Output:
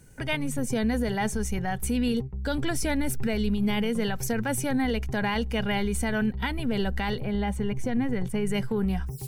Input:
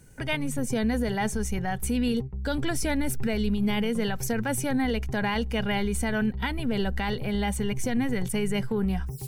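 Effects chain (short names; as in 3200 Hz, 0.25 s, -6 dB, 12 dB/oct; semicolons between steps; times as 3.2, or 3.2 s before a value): 7.2–8.47 high shelf 2800 Hz -11.5 dB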